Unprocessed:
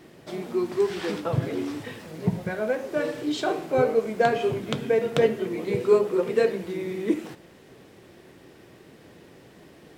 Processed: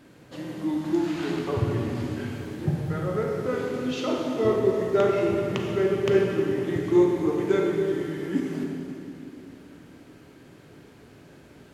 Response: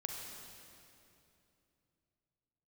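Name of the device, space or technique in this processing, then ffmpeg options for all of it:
slowed and reverbed: -filter_complex "[0:a]asetrate=37485,aresample=44100[s0];[1:a]atrim=start_sample=2205[s1];[s0][s1]afir=irnorm=-1:irlink=0"

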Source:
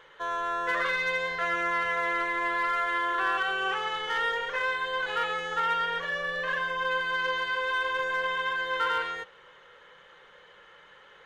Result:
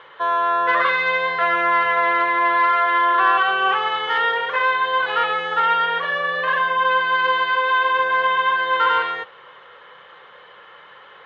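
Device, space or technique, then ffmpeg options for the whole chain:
guitar cabinet: -af "highpass=84,equalizer=f=180:t=q:w=4:g=-3,equalizer=f=720:t=q:w=4:g=5,equalizer=f=1100:t=q:w=4:g=7,lowpass=f=3900:w=0.5412,lowpass=f=3900:w=1.3066,highshelf=f=5700:g=6,volume=2.24"

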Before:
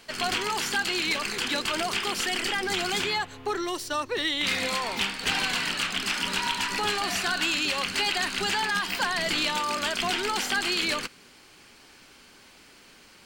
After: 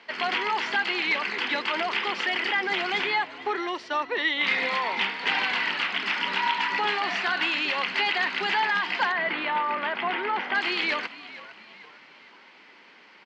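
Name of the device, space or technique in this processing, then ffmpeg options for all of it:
frequency-shifting delay pedal into a guitar cabinet: -filter_complex "[0:a]asplit=5[s0][s1][s2][s3][s4];[s1]adelay=458,afreqshift=-67,volume=0.141[s5];[s2]adelay=916,afreqshift=-134,volume=0.0624[s6];[s3]adelay=1374,afreqshift=-201,volume=0.0272[s7];[s4]adelay=1832,afreqshift=-268,volume=0.012[s8];[s0][s5][s6][s7][s8]amix=inputs=5:normalize=0,highpass=77,equalizer=f=200:t=q:w=4:g=3,equalizer=f=930:t=q:w=4:g=6,equalizer=f=2000:t=q:w=4:g=7,equalizer=f=4000:t=q:w=4:g=-4,lowpass=f=4200:w=0.5412,lowpass=f=4200:w=1.3066,asettb=1/sr,asplit=3[s9][s10][s11];[s9]atrim=end=9.124[s12];[s10]atrim=start=9.12:end=10.55,asetpts=PTS-STARTPTS,afade=t=in:d=0.004:c=qsin,afade=t=out:st=1.426:d=0.004:c=qsin,lowpass=2200[s13];[s11]atrim=start=10.546[s14];[s12][s13]acrossfade=d=0.004:c1=hsin:c2=qsin[s15];[s15][s14]acrossfade=d=0.004:c1=qsin:c2=hsin,highpass=290"

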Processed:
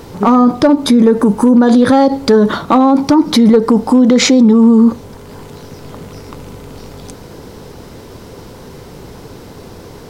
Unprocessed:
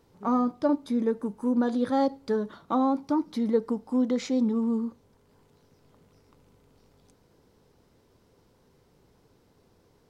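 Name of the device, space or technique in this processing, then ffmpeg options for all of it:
loud club master: -af "acompressor=threshold=0.0501:ratio=3,asoftclip=type=hard:threshold=0.0841,alimiter=level_in=33.5:limit=0.891:release=50:level=0:latency=1,volume=0.891"

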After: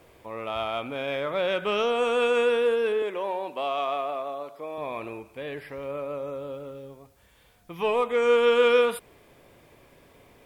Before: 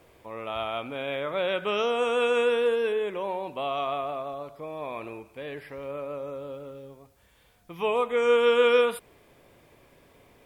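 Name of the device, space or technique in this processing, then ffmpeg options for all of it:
parallel distortion: -filter_complex "[0:a]asplit=2[s0][s1];[s1]asoftclip=type=hard:threshold=0.0376,volume=0.266[s2];[s0][s2]amix=inputs=2:normalize=0,asettb=1/sr,asplit=3[s3][s4][s5];[s3]atrim=end=3.024[s6];[s4]atrim=start=3.02:end=4.78,asetpts=PTS-STARTPTS,afade=t=in:d=0.004:c=qsin,afade=t=out:st=1.756:d=0.004:c=qsin,highpass=280[s7];[s5]atrim=start=4.776[s8];[s6][s7]acrossfade=d=0.004:c1=hsin:c2=qsin[s9];[s9][s8]acrossfade=d=0.004:c1=qsin:c2=hsin"

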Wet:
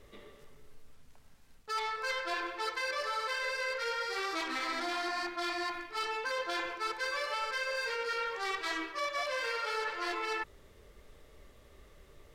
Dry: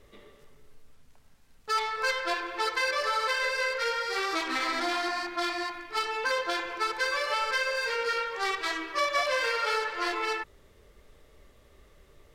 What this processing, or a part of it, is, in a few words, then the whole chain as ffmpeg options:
compression on the reversed sound: -af "areverse,acompressor=threshold=0.0251:ratio=6,areverse"

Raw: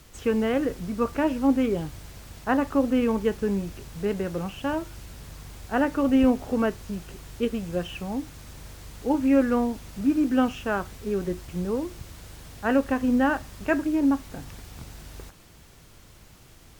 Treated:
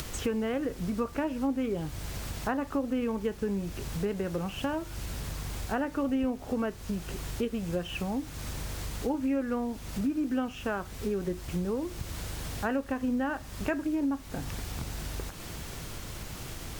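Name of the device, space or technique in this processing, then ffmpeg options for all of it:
upward and downward compression: -af "acompressor=mode=upward:threshold=0.02:ratio=2.5,acompressor=threshold=0.0224:ratio=4,volume=1.58"

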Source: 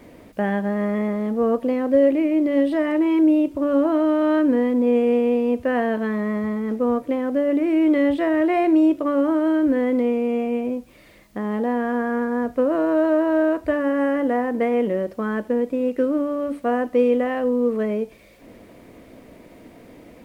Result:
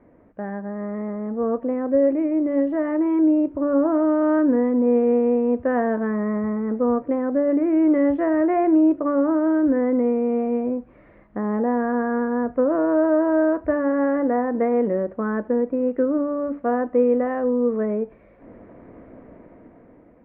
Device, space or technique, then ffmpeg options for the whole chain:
action camera in a waterproof case: -af "lowpass=f=1700:w=0.5412,lowpass=f=1700:w=1.3066,dynaudnorm=f=340:g=7:m=3.76,volume=0.398" -ar 24000 -c:a aac -b:a 96k

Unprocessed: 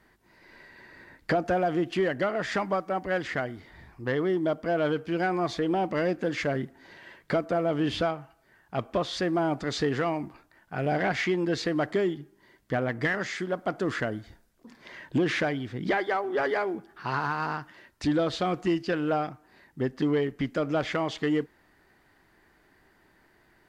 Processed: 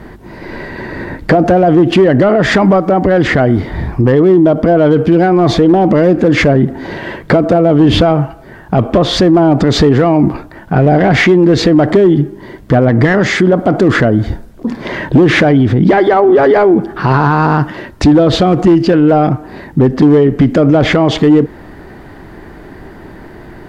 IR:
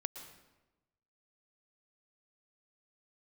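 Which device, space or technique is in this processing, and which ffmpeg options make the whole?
mastering chain: -af "equalizer=f=3400:t=o:w=0.77:g=2.5,acompressor=threshold=0.0316:ratio=1.5,asoftclip=type=tanh:threshold=0.0891,tiltshelf=f=1100:g=8.5,asoftclip=type=hard:threshold=0.126,alimiter=level_in=21.1:limit=0.891:release=50:level=0:latency=1,volume=0.891"

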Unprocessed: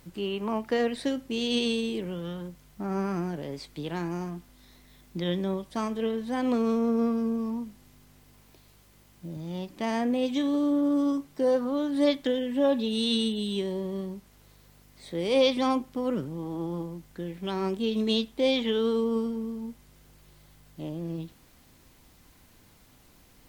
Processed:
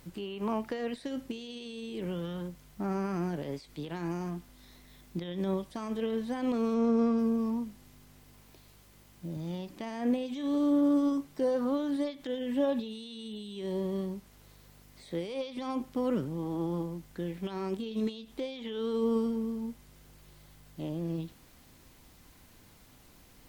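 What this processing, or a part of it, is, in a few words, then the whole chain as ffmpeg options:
de-esser from a sidechain: -filter_complex "[0:a]asplit=2[s0][s1];[s1]highpass=4300,apad=whole_len=1035586[s2];[s0][s2]sidechaincompress=threshold=0.00224:ratio=4:attack=2.5:release=75,asettb=1/sr,asplit=3[s3][s4][s5];[s3]atrim=end=6.744[s6];[s4]atrim=start=6.74:end=7.19,asetpts=PTS-STARTPTS,afade=t=in:d=0.004:c=qsin,afade=t=out:st=0.446:d=0.004:c=qsin,lowpass=f=8200:w=0.5412,lowpass=f=8200:w=1.3066[s7];[s5]atrim=start=7.186[s8];[s6][s7]acrossfade=d=0.004:c1=hsin:c2=qsin[s9];[s9][s8]acrossfade=d=0.004:c1=qsin:c2=hsin"

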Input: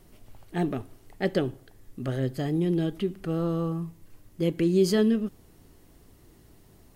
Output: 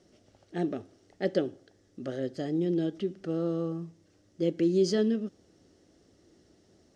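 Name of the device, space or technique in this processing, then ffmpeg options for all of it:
car door speaker: -af "highpass=100,equalizer=f=130:t=q:w=4:g=-9,equalizer=f=330:t=q:w=4:g=4,equalizer=f=550:t=q:w=4:g=6,equalizer=f=1000:t=q:w=4:g=-10,equalizer=f=2400:t=q:w=4:g=-5,equalizer=f=5600:t=q:w=4:g=7,lowpass=f=7300:w=0.5412,lowpass=f=7300:w=1.3066,volume=0.596"

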